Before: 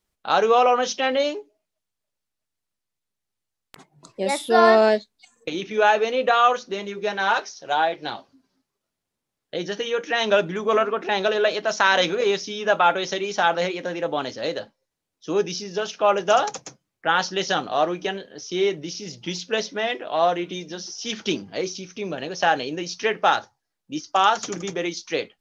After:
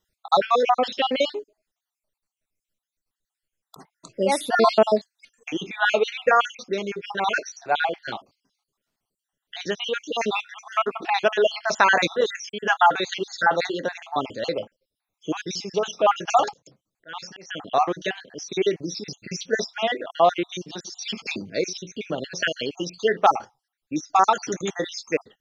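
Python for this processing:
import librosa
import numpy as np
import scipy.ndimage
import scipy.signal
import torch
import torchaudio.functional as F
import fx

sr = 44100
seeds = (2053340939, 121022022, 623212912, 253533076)

y = fx.spec_dropout(x, sr, seeds[0], share_pct=55)
y = fx.auto_swell(y, sr, attack_ms=508.0, at=(16.53, 17.68))
y = y * librosa.db_to_amplitude(3.0)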